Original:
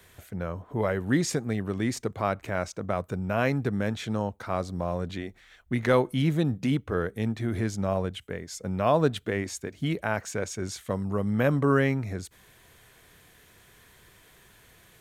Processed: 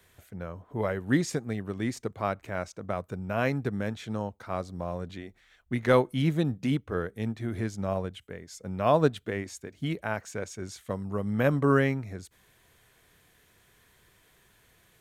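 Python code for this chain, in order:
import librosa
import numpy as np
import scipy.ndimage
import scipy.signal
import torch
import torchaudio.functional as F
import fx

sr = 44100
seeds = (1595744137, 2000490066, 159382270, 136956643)

y = fx.upward_expand(x, sr, threshold_db=-33.0, expansion=1.5)
y = y * librosa.db_to_amplitude(1.0)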